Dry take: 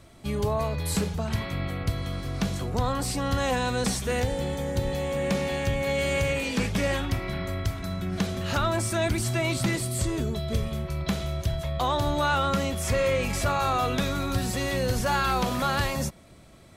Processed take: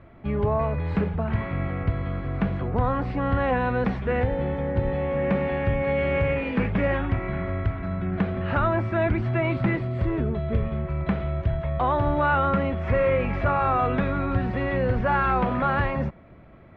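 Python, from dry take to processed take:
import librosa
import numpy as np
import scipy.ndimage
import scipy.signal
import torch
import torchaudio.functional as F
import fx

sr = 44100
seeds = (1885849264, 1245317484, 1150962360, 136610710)

y = scipy.signal.sosfilt(scipy.signal.butter(4, 2200.0, 'lowpass', fs=sr, output='sos'), x)
y = y * 10.0 ** (3.0 / 20.0)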